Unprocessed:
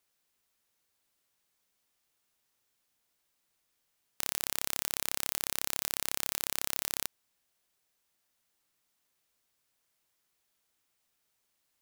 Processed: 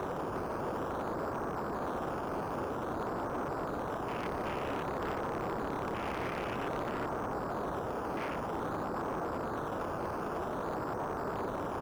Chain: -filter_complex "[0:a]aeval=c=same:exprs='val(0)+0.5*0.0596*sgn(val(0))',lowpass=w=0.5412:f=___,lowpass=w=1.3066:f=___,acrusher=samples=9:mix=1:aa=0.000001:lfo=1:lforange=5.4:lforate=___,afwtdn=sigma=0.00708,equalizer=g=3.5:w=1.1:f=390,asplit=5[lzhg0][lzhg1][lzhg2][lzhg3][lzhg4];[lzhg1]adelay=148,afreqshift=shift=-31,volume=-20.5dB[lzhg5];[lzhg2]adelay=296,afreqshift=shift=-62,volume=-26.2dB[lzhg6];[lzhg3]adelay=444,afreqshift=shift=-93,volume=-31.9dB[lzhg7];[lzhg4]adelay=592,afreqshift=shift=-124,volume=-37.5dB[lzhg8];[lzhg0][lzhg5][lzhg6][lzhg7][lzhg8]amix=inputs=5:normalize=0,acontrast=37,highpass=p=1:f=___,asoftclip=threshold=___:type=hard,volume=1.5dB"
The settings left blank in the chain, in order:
1500, 1500, 0.52, 61, -31.5dB